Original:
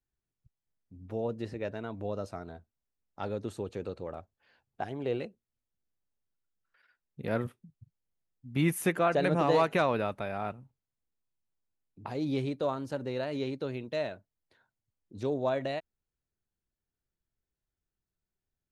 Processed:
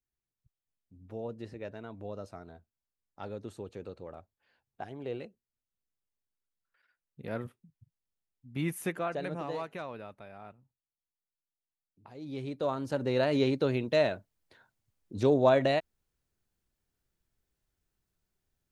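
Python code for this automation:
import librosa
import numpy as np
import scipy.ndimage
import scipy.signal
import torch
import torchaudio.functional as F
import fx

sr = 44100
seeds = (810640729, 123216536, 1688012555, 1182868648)

y = fx.gain(x, sr, db=fx.line((8.89, -5.5), (9.74, -13.5), (12.12, -13.5), (12.62, -1.0), (13.24, 7.0)))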